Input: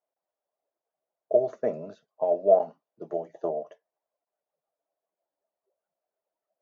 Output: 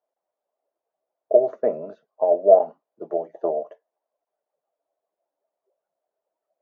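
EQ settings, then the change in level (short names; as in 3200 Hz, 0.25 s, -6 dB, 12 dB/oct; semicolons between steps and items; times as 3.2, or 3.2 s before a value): band-pass 430 Hz, Q 0.55; low shelf 280 Hz -8.5 dB; +8.0 dB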